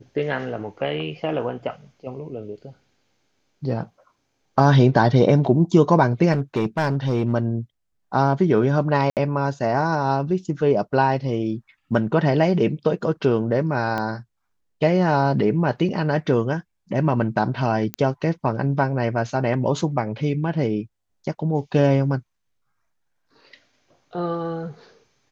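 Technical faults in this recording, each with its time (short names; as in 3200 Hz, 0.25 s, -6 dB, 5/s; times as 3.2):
6.32–7.33 clipped -16 dBFS
9.1–9.17 gap 68 ms
13.98 pop -14 dBFS
17.94 pop -10 dBFS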